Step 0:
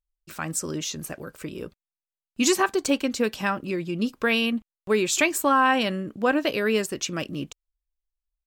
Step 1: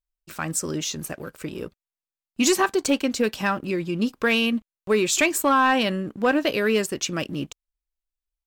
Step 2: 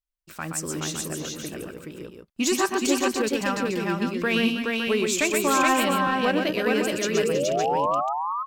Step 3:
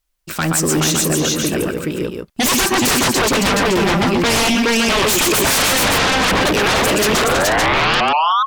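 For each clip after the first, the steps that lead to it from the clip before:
leveller curve on the samples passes 1; level −1.5 dB
sound drawn into the spectrogram rise, 0:07.14–0:08.01, 390–1,300 Hz −22 dBFS; on a send: multi-tap delay 123/321/422/563 ms −5/−12/−3/−8 dB; on the sum: level −4 dB
sine wavefolder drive 16 dB, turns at −9.5 dBFS; level −2.5 dB

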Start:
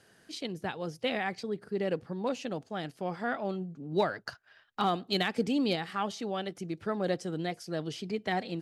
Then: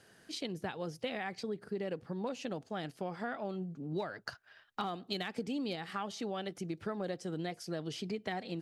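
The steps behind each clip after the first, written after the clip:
downward compressor 6 to 1, threshold −34 dBFS, peak gain reduction 11.5 dB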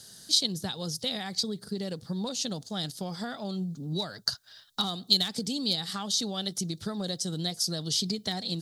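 drawn EQ curve 200 Hz 0 dB, 320 Hz −8 dB, 1,300 Hz −7 dB, 2,600 Hz −10 dB, 3,700 Hz +12 dB
level +8 dB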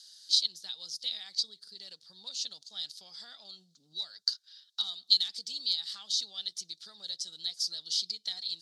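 resonant band-pass 4,400 Hz, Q 2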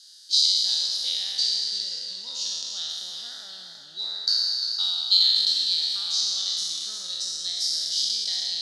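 peak hold with a decay on every bin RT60 2.59 s
feedback echo with a swinging delay time 351 ms, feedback 37%, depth 60 cents, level −9 dB
level +1 dB

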